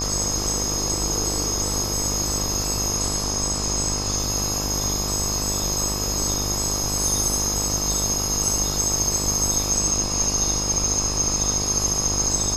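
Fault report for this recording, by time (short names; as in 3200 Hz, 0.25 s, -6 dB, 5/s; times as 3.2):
buzz 50 Hz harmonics 23 -29 dBFS
tone 5100 Hz -29 dBFS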